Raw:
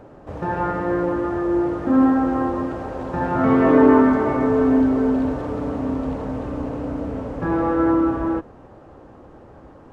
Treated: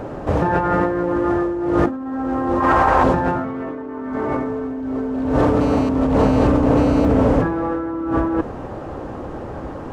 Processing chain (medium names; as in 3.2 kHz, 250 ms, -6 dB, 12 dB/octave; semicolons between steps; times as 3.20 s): 2.60–3.04 s: graphic EQ 125/250/500/1000/2000 Hz -5/-6/-5/+10/+5 dB; compressor with a negative ratio -28 dBFS, ratio -1; 5.61–7.05 s: mobile phone buzz -40 dBFS; trim +8 dB